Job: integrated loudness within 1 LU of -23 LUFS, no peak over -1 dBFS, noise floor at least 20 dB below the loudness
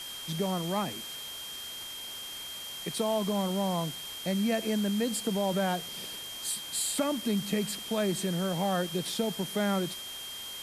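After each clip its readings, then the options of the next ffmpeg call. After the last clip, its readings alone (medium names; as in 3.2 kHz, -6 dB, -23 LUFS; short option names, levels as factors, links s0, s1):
steady tone 3.2 kHz; tone level -40 dBFS; noise floor -41 dBFS; noise floor target -52 dBFS; loudness -31.5 LUFS; peak level -16.0 dBFS; loudness target -23.0 LUFS
-> -af "bandreject=f=3200:w=30"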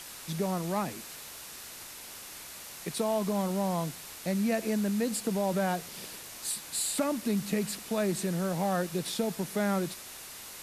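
steady tone not found; noise floor -45 dBFS; noise floor target -52 dBFS
-> -af "afftdn=nr=7:nf=-45"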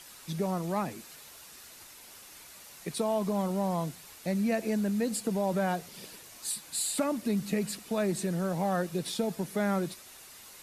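noise floor -51 dBFS; noise floor target -52 dBFS
-> -af "afftdn=nr=6:nf=-51"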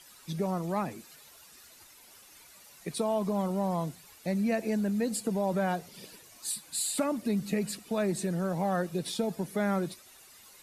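noise floor -55 dBFS; loudness -31.5 LUFS; peak level -17.0 dBFS; loudness target -23.0 LUFS
-> -af "volume=2.66"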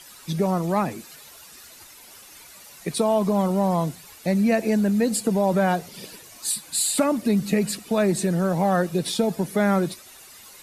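loudness -23.0 LUFS; peak level -8.5 dBFS; noise floor -47 dBFS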